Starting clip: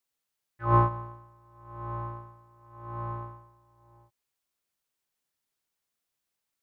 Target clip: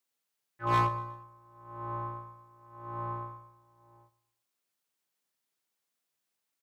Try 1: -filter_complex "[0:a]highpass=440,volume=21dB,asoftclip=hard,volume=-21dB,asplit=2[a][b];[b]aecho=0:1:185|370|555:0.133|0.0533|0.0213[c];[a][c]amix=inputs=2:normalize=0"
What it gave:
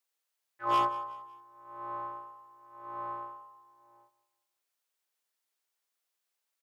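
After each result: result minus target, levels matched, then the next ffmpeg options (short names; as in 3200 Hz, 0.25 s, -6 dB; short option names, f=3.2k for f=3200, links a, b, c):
125 Hz band -18.0 dB; echo 64 ms late
-filter_complex "[0:a]highpass=140,volume=21dB,asoftclip=hard,volume=-21dB,asplit=2[a][b];[b]aecho=0:1:185|370|555:0.133|0.0533|0.0213[c];[a][c]amix=inputs=2:normalize=0"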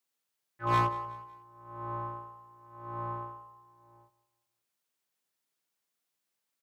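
echo 64 ms late
-filter_complex "[0:a]highpass=140,volume=21dB,asoftclip=hard,volume=-21dB,asplit=2[a][b];[b]aecho=0:1:121|242|363:0.133|0.0533|0.0213[c];[a][c]amix=inputs=2:normalize=0"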